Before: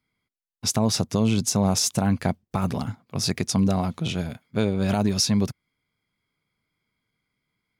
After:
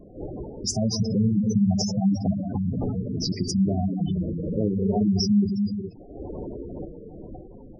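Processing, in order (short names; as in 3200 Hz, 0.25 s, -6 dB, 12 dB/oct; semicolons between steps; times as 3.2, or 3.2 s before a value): wind noise 510 Hz -37 dBFS; non-linear reverb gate 0.46 s flat, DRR -0.5 dB; spectral gate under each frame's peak -10 dB strong; gain -1.5 dB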